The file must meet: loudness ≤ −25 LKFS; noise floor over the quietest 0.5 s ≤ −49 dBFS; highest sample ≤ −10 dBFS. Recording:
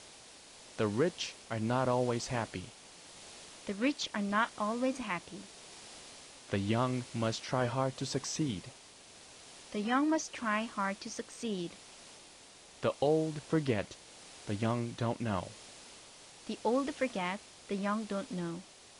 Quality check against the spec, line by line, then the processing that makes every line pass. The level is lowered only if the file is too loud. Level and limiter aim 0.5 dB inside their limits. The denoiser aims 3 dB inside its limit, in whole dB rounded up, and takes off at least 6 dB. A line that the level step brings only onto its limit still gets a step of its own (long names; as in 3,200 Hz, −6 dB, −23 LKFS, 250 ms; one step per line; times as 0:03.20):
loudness −34.5 LKFS: in spec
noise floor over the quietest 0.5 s −56 dBFS: in spec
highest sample −17.0 dBFS: in spec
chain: no processing needed